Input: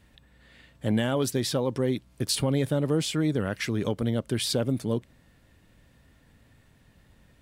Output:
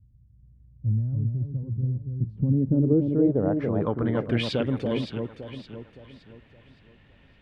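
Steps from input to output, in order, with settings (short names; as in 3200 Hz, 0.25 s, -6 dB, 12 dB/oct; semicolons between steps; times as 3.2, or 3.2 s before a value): low-pass sweep 110 Hz -> 2800 Hz, 1.98–4.53; echo with dull and thin repeats by turns 0.283 s, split 1000 Hz, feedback 60%, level -4 dB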